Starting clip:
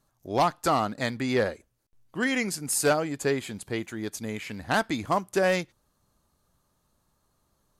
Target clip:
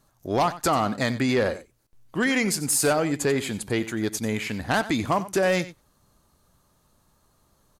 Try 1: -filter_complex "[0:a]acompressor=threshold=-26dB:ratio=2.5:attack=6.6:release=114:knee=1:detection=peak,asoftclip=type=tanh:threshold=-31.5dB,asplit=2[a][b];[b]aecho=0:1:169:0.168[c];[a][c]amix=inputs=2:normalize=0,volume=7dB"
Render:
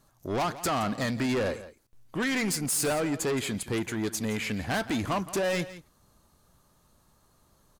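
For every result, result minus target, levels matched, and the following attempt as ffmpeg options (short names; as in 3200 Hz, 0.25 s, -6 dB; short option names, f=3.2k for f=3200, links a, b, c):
echo 77 ms late; soft clip: distortion +14 dB
-filter_complex "[0:a]acompressor=threshold=-26dB:ratio=2.5:attack=6.6:release=114:knee=1:detection=peak,asoftclip=type=tanh:threshold=-31.5dB,asplit=2[a][b];[b]aecho=0:1:92:0.168[c];[a][c]amix=inputs=2:normalize=0,volume=7dB"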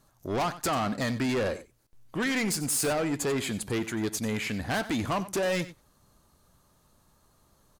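soft clip: distortion +14 dB
-filter_complex "[0:a]acompressor=threshold=-26dB:ratio=2.5:attack=6.6:release=114:knee=1:detection=peak,asoftclip=type=tanh:threshold=-19.5dB,asplit=2[a][b];[b]aecho=0:1:92:0.168[c];[a][c]amix=inputs=2:normalize=0,volume=7dB"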